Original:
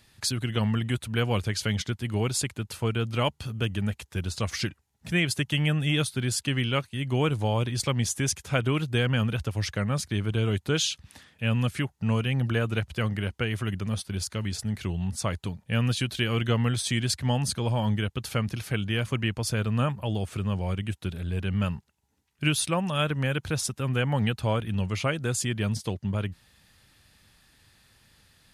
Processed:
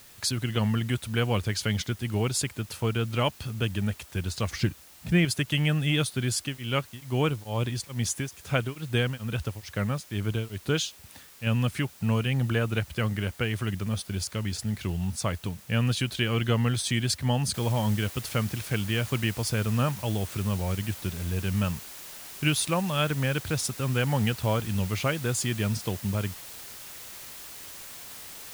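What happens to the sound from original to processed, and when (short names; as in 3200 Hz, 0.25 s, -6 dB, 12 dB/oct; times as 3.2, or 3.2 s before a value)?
4.51–5.25 tilt -2 dB/oct
6.36–11.47 beating tremolo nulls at 2.3 Hz
17.54 noise floor step -52 dB -43 dB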